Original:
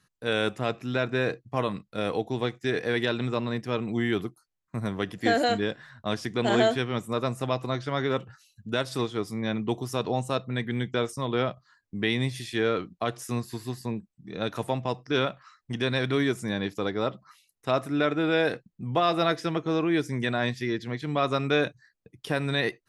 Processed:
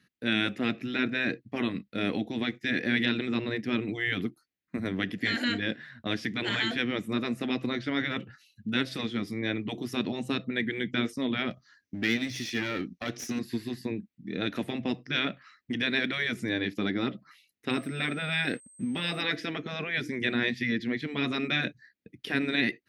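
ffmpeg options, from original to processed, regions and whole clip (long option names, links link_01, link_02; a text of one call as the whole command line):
ffmpeg -i in.wav -filter_complex "[0:a]asettb=1/sr,asplit=3[link_01][link_02][link_03];[link_01]atrim=end=11.504[link_04];[link_02]atrim=start=11.5:end=13.39,asetpts=PTS-STARTPTS,afade=type=in:duration=0.004:curve=qsin,afade=type=out:start_time=1.886:duration=0.004:curve=qsin,equalizer=frequency=5900:width=3:gain=14.5,aeval=exprs='clip(val(0),-1,0.0237)':channel_layout=same[link_05];[link_03]atrim=start=13.386[link_06];[link_04][link_05]acrossfade=duration=0.004:curve1=hsin:curve2=qsin[link_07];[link_07][link_06]acrossfade=duration=0.004:curve1=qsin:curve2=hsin,asettb=1/sr,asplit=3[link_08][link_09][link_10];[link_08]atrim=end=17.704[link_11];[link_09]atrim=start=17.7:end=19.21,asetpts=PTS-STARTPTS,afade=type=in:duration=0.004:curve=qsin,afade=type=out:start_time=1.506:duration=0.004:curve=qsin,aeval=exprs='sgn(val(0))*max(abs(val(0))-0.00188,0)':channel_layout=same,aeval=exprs='val(0)+0.00708*sin(2*PI*8300*n/s)':channel_layout=same,bandreject=frequency=6700:width=5.3[link_12];[link_10]atrim=start=19.206[link_13];[link_11][link_12]acrossfade=duration=0.004:curve1=hsin:curve2=qsin[link_14];[link_14][link_13]acrossfade=duration=0.004:curve1=qsin:curve2=hsin,highpass=62,afftfilt=real='re*lt(hypot(re,im),0.224)':imag='im*lt(hypot(re,im),0.224)':win_size=1024:overlap=0.75,equalizer=frequency=125:width_type=o:width=1:gain=-3,equalizer=frequency=250:width_type=o:width=1:gain=11,equalizer=frequency=1000:width_type=o:width=1:gain=-10,equalizer=frequency=2000:width_type=o:width=1:gain=9,equalizer=frequency=4000:width_type=o:width=1:gain=3,equalizer=frequency=8000:width_type=o:width=1:gain=-9,volume=-1.5dB" out.wav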